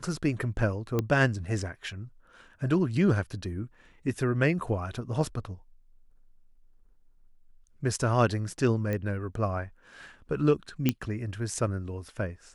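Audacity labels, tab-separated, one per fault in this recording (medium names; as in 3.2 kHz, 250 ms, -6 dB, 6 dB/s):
0.990000	0.990000	pop -14 dBFS
8.930000	8.930000	pop -19 dBFS
10.890000	10.890000	pop -10 dBFS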